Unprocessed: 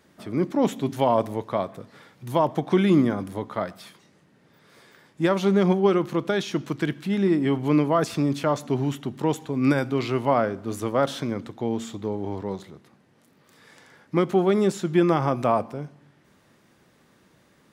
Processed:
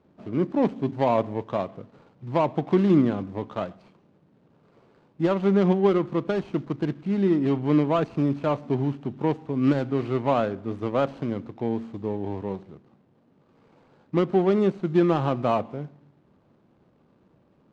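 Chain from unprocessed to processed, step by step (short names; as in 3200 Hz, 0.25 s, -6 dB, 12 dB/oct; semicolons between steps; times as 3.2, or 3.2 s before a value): median filter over 25 samples; air absorption 110 m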